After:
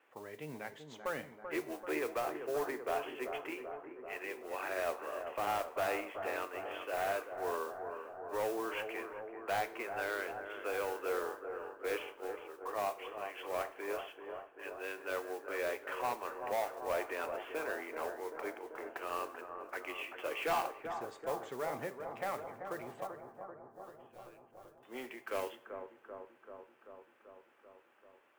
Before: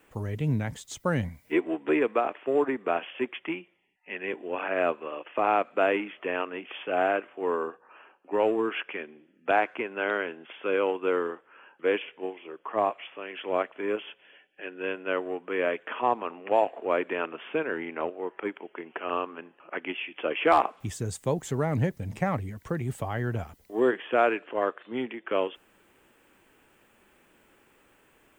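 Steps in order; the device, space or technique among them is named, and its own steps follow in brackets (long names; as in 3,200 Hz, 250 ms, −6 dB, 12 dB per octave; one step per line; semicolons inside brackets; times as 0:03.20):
carbon microphone (band-pass filter 480–2,800 Hz; soft clipping −23 dBFS, distortion −10 dB; noise that follows the level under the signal 17 dB)
0:23.07–0:24.83: guitar amp tone stack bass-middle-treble 10-0-1
bucket-brigade delay 387 ms, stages 4,096, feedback 71%, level −8 dB
coupled-rooms reverb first 0.47 s, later 4.5 s, from −28 dB, DRR 11 dB
level −6 dB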